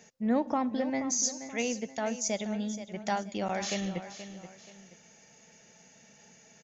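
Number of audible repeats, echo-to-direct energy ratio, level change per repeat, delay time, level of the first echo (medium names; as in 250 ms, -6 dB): 2, -11.5 dB, -8.5 dB, 478 ms, -12.0 dB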